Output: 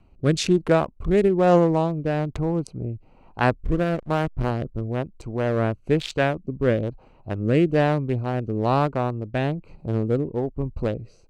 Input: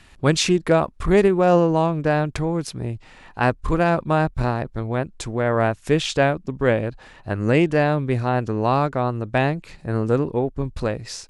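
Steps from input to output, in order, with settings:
adaptive Wiener filter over 25 samples
0:03.64–0:04.51: slack as between gear wheels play −24.5 dBFS
rotating-speaker cabinet horn 1.1 Hz

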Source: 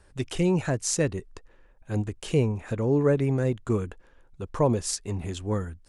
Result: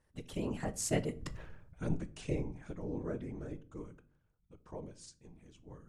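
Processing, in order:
source passing by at 0:01.39, 26 m/s, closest 1.8 metres
random phases in short frames
convolution reverb RT60 0.50 s, pre-delay 7 ms, DRR 12.5 dB
level +9.5 dB

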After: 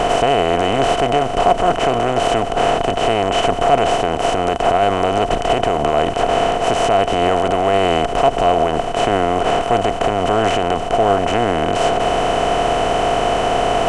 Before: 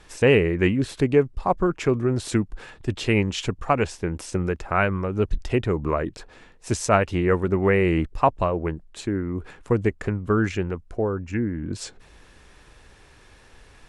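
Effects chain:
compressor on every frequency bin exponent 0.2
brickwall limiter −3.5 dBFS, peak gain reduction 8 dB
hollow resonant body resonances 700/3,000 Hz, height 16 dB, ringing for 40 ms
level −5 dB

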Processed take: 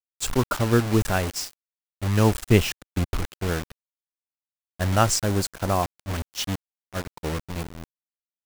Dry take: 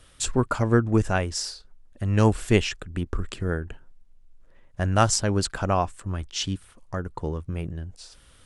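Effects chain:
bit reduction 5 bits
0:02.48–0:03.15: parametric band 89 Hz +4.5 dB 2.7 octaves
noise gate −28 dBFS, range −10 dB
0:05.21–0:05.83: dynamic equaliser 2,700 Hz, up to −4 dB, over −37 dBFS, Q 0.72

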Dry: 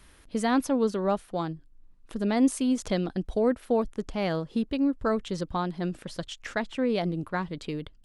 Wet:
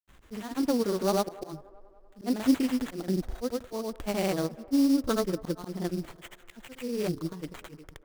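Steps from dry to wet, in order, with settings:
dynamic equaliser 340 Hz, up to +5 dB, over −41 dBFS, Q 3.9
volume swells 240 ms
granular cloud
sample-rate reduction 5,200 Hz, jitter 20%
delay with a band-pass on its return 193 ms, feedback 58%, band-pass 790 Hz, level −18.5 dB

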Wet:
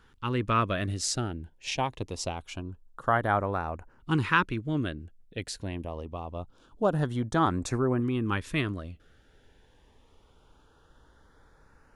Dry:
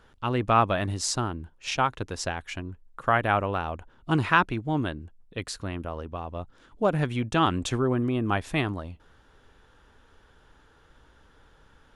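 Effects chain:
auto-filter notch saw up 0.25 Hz 600–3,600 Hz
level −1.5 dB

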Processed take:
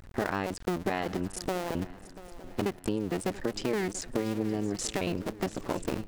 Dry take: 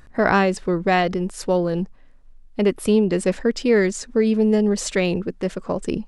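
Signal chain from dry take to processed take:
sub-harmonics by changed cycles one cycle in 2, muted
downward compressor 6 to 1, threshold −27 dBFS, peak gain reduction 13 dB
on a send: feedback echo with a long and a short gap by turns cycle 916 ms, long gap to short 3 to 1, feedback 39%, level −17 dB

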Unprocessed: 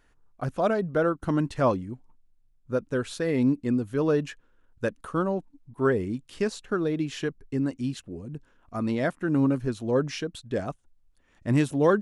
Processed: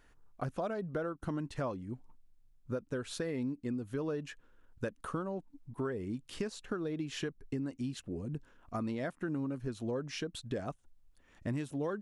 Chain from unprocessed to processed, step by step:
downward compressor 6 to 1, threshold −34 dBFS, peak gain reduction 17 dB

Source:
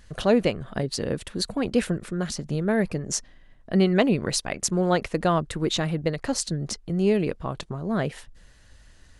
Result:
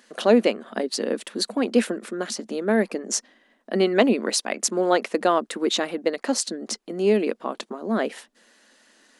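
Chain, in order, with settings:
elliptic high-pass filter 220 Hz, stop band 40 dB
level +3.5 dB

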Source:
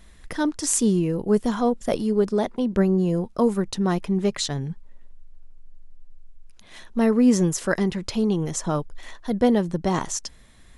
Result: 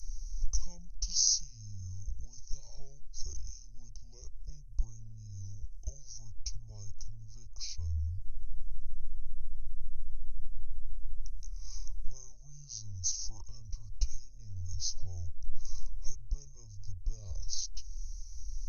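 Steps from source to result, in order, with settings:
mains hum 60 Hz, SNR 33 dB
downward compressor 3 to 1, threshold −33 dBFS, peak gain reduction 14.5 dB
inverse Chebyshev band-stop filter 200–6,300 Hz, stop band 40 dB
wrong playback speed 78 rpm record played at 45 rpm
level +16 dB

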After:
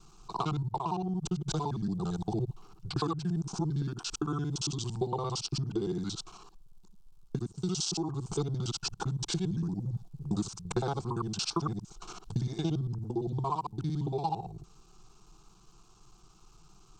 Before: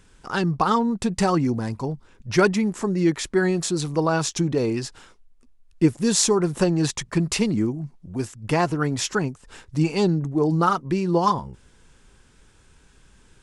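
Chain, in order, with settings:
reversed piece by piece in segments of 45 ms
downward compressor 6 to 1, threshold −26 dBFS, peak gain reduction 13 dB
surface crackle 310 per second −62 dBFS
phaser with its sweep stopped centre 490 Hz, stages 8
speech leveller within 3 dB 0.5 s
speed change −21%

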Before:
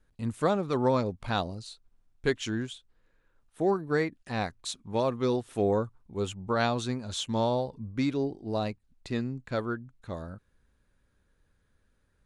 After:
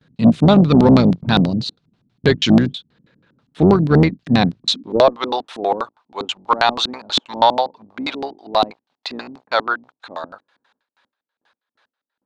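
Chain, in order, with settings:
sub-octave generator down 2 octaves, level −2 dB
noise gate with hold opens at −58 dBFS
high-pass filter sweep 150 Hz → 850 Hz, 0:04.63–0:05.14
in parallel at −5.5 dB: asymmetric clip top −22.5 dBFS
on the sum: auto-filter low-pass square 6.2 Hz 260–4,000 Hz
boost into a limiter +10 dB
saturating transformer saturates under 230 Hz

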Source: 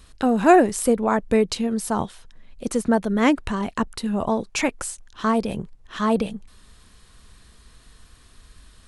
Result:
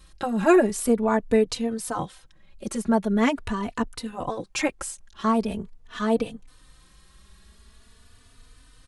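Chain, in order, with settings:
barber-pole flanger 3.3 ms +0.43 Hz

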